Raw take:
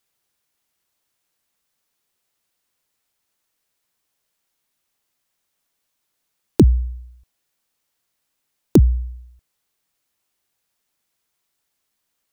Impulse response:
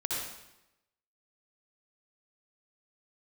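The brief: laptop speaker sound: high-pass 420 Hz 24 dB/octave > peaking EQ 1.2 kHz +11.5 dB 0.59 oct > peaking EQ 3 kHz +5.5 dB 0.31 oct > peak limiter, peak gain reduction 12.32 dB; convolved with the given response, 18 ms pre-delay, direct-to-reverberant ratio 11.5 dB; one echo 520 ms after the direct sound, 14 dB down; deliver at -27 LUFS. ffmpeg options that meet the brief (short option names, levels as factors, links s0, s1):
-filter_complex "[0:a]aecho=1:1:520:0.2,asplit=2[s0][s1];[1:a]atrim=start_sample=2205,adelay=18[s2];[s1][s2]afir=irnorm=-1:irlink=0,volume=0.141[s3];[s0][s3]amix=inputs=2:normalize=0,highpass=f=420:w=0.5412,highpass=f=420:w=1.3066,equalizer=f=1200:t=o:w=0.59:g=11.5,equalizer=f=3000:t=o:w=0.31:g=5.5,volume=4.47,alimiter=limit=0.596:level=0:latency=1"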